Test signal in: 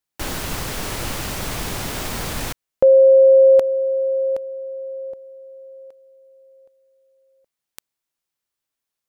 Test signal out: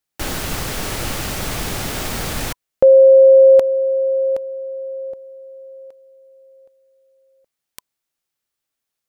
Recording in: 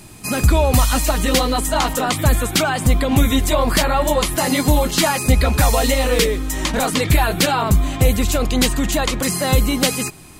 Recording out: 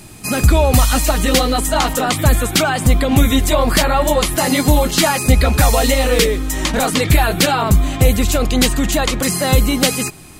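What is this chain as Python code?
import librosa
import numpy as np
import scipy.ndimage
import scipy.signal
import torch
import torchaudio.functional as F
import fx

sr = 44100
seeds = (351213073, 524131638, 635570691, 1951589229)

y = fx.notch(x, sr, hz=1000.0, q=16.0)
y = F.gain(torch.from_numpy(y), 2.5).numpy()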